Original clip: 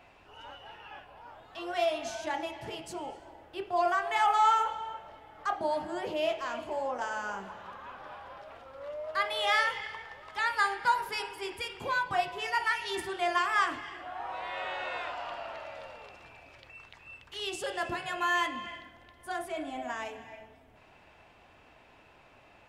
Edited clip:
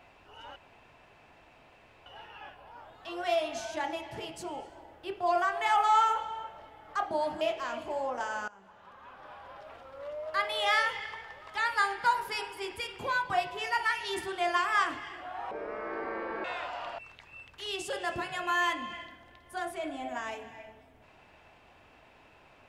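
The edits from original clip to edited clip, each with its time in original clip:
0.56 insert room tone 1.50 s
5.91–6.22 cut
7.29–8.5 fade in, from -21 dB
14.32–14.89 speed 61%
15.43–16.72 cut

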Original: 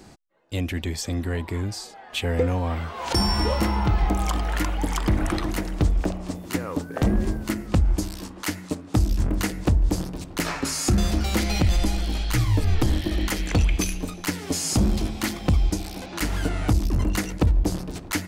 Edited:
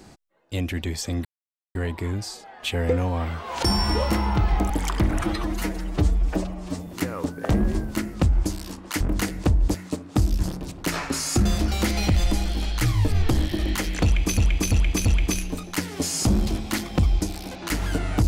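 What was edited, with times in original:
1.25 insert silence 0.50 s
4.2–4.78 cut
5.29–6.4 stretch 1.5×
8.53–9.22 move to 9.96
13.56–13.9 loop, 4 plays

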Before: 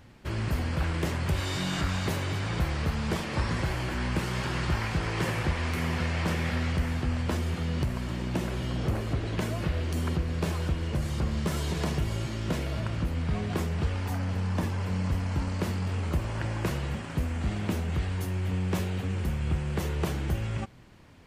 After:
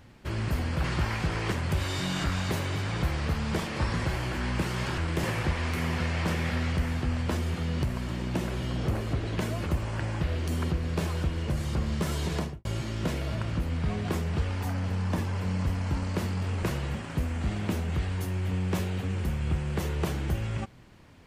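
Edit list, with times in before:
0.84–1.09 swap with 4.55–5.23
11.79–12.1 studio fade out
16.08–16.63 move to 9.66

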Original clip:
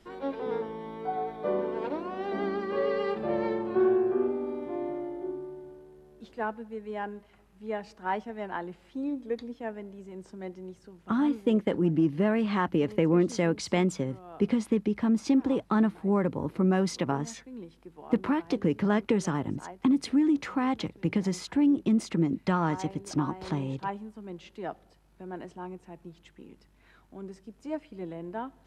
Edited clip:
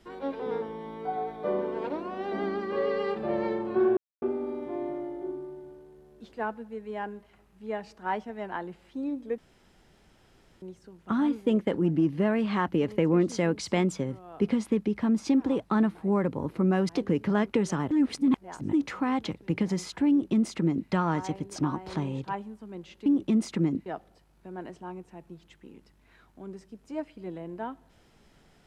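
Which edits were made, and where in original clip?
3.97–4.22 mute
9.38–10.62 room tone
16.89–18.44 cut
19.46–20.28 reverse
21.64–22.44 copy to 24.61

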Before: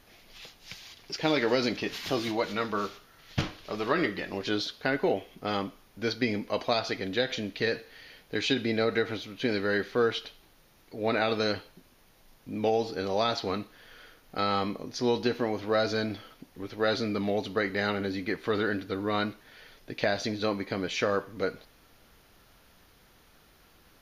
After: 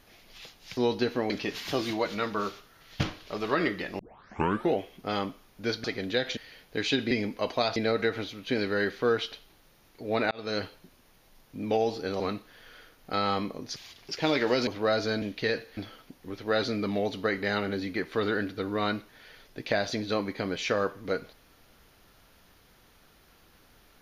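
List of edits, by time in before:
0.77–1.68 swap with 15.01–15.54
4.37 tape start 0.74 s
6.22–6.87 move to 8.69
7.4–7.95 move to 16.09
11.24–11.56 fade in
13.13–13.45 cut

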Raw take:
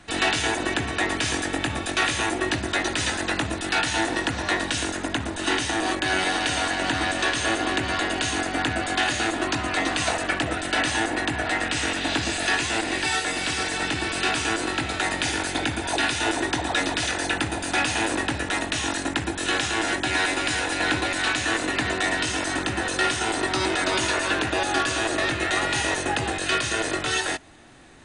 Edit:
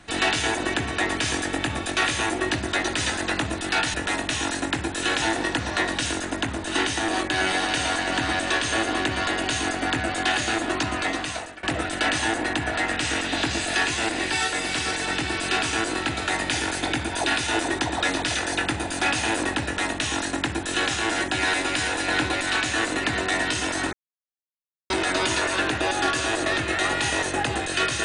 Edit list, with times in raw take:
9.67–10.35 fade out, to -23 dB
18.37–19.65 copy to 3.94
22.65–23.62 mute

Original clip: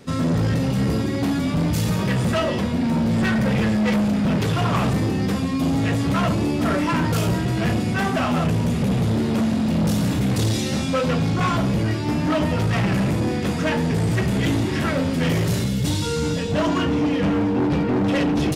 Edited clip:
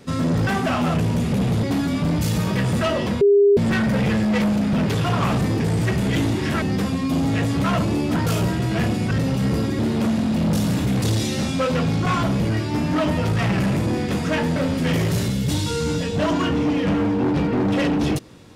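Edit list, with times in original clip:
0.47–1.15 swap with 7.97–9.13
2.73–3.09 bleep 404 Hz -10.5 dBFS
6.66–7.02 cut
13.9–14.92 move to 5.12

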